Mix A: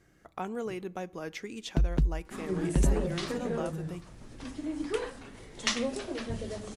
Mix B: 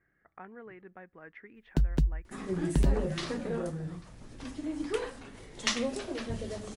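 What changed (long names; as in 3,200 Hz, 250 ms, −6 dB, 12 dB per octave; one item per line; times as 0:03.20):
speech: add transistor ladder low-pass 2,000 Hz, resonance 65%
first sound: add bass and treble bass 0 dB, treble +7 dB
reverb: off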